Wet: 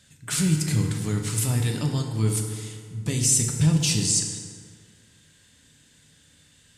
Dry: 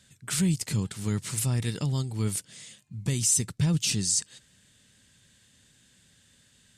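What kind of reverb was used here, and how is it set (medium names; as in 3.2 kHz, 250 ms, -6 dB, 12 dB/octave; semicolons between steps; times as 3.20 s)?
FDN reverb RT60 2 s, low-frequency decay 0.9×, high-frequency decay 0.55×, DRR 1.5 dB; trim +2 dB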